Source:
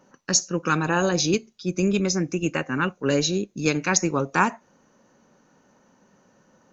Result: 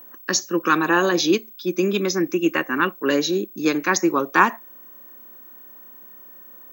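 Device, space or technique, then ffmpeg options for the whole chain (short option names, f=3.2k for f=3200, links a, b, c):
old television with a line whistle: -filter_complex "[0:a]asettb=1/sr,asplit=3[a][b][c];[a]atrim=end=3.164[d];[b]atrim=start=3.16:end=4.14,asetpts=PTS-STARTPTS,afade=t=in:d=0.004:c=qsin,afade=t=out:st=0.976:d=0.004:c=qsin,equalizer=f=3k:t=o:w=0.93:g=-5.5[e];[c]atrim=start=4.136[f];[d][e]acrossfade=d=0.004:c1=hsin:c2=qsin[g];[g][f]acrossfade=d=0.004:c1=qsin:c2=hsin,highpass=f=200:w=0.5412,highpass=f=200:w=1.3066,equalizer=f=340:t=q:w=4:g=8,equalizer=f=1.1k:t=q:w=4:g=8,equalizer=f=1.8k:t=q:w=4:g=8,equalizer=f=3.4k:t=q:w=4:g=9,lowpass=f=6.5k:w=0.5412,lowpass=f=6.5k:w=1.3066,aeval=exprs='val(0)+0.00891*sin(2*PI*15734*n/s)':c=same"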